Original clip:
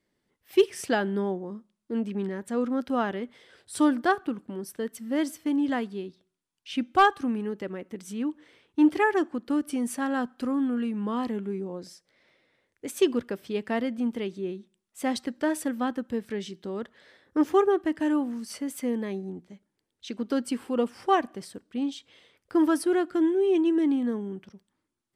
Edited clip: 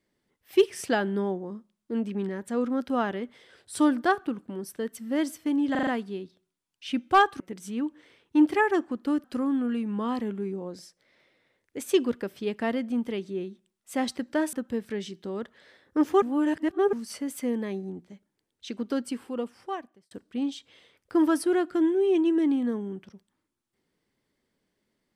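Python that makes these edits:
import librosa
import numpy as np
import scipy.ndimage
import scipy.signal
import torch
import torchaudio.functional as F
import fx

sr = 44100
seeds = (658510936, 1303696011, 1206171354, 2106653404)

y = fx.edit(x, sr, fx.stutter(start_s=5.71, slice_s=0.04, count=5),
    fx.cut(start_s=7.24, length_s=0.59),
    fx.cut(start_s=9.67, length_s=0.65),
    fx.cut(start_s=15.61, length_s=0.32),
    fx.reverse_span(start_s=17.62, length_s=0.71),
    fx.fade_out_span(start_s=20.11, length_s=1.4), tone=tone)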